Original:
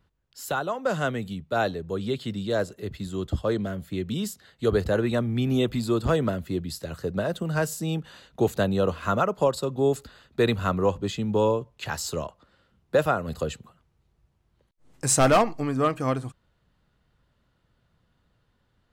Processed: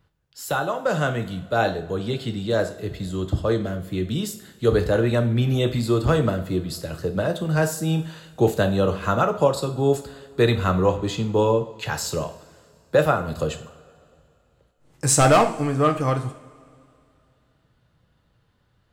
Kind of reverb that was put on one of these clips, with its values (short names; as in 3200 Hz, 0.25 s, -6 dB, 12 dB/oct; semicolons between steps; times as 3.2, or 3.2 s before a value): two-slope reverb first 0.47 s, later 2.7 s, from -20 dB, DRR 6 dB; gain +2.5 dB